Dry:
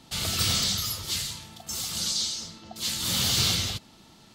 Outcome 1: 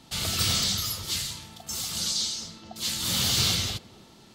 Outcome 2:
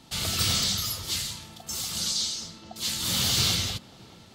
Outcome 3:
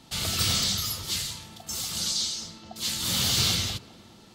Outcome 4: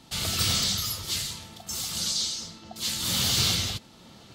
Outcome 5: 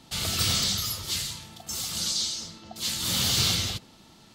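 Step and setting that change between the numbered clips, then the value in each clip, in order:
narrowing echo, time: 269, 626, 405, 919, 67 ms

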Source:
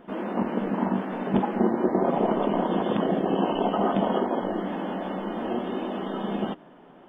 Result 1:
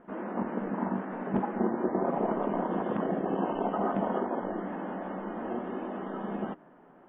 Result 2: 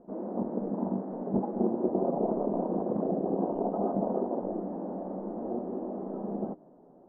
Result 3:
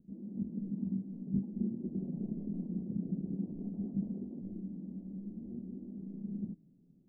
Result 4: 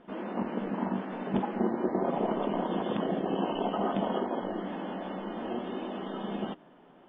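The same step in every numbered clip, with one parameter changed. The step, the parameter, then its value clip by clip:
ladder low-pass, frequency: 2300, 840, 220, 5900 Hz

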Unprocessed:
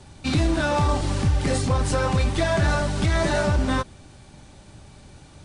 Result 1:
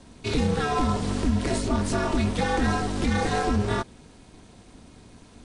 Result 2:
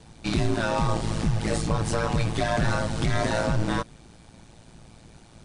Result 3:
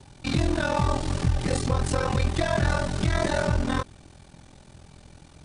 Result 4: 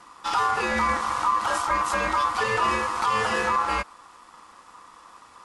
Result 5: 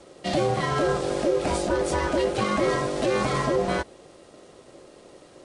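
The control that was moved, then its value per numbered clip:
ring modulator, frequency: 150, 56, 21, 1100, 450 Hz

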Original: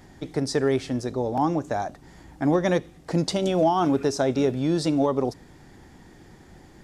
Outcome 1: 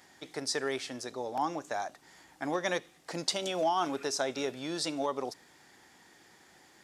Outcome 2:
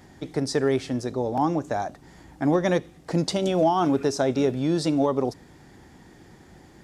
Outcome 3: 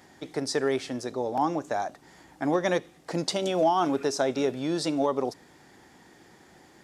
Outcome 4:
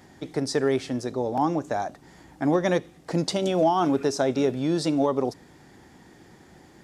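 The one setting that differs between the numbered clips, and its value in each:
HPF, cutoff: 1500, 55, 450, 150 Hz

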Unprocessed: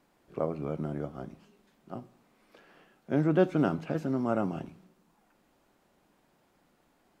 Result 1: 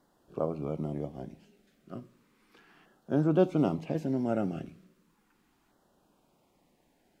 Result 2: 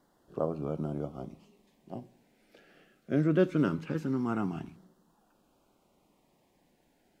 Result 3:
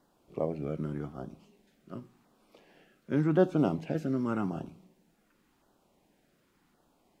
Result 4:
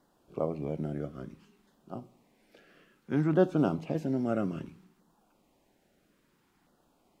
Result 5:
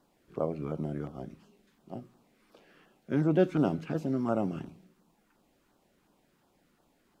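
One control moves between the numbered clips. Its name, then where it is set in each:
LFO notch, rate: 0.35, 0.21, 0.89, 0.6, 2.8 Hz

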